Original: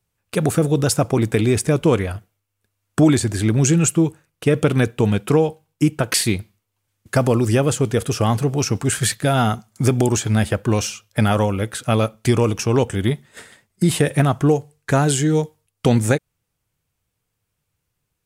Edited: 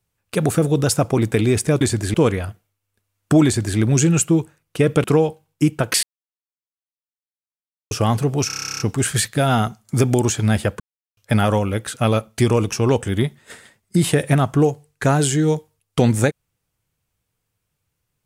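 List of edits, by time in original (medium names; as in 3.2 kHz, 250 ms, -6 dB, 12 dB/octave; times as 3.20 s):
3.12–3.45 s: copy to 1.81 s
4.71–5.24 s: delete
6.23–8.11 s: mute
8.67 s: stutter 0.03 s, 12 plays
10.67–11.04 s: mute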